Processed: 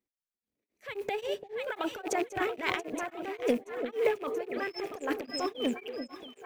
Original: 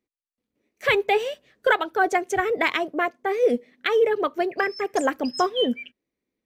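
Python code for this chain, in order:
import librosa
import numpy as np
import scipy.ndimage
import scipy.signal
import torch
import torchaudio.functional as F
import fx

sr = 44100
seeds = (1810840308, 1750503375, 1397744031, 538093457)

p1 = fx.rattle_buzz(x, sr, strikes_db=-38.0, level_db=-25.0)
p2 = fx.mod_noise(p1, sr, seeds[0], snr_db=34)
p3 = fx.transient(p2, sr, attack_db=-11, sustain_db=10)
p4 = p3 + fx.echo_alternate(p3, sr, ms=341, hz=850.0, feedback_pct=70, wet_db=-6.0, dry=0)
p5 = p4 * np.abs(np.cos(np.pi * 3.7 * np.arange(len(p4)) / sr))
y = p5 * 10.0 ** (-7.0 / 20.0)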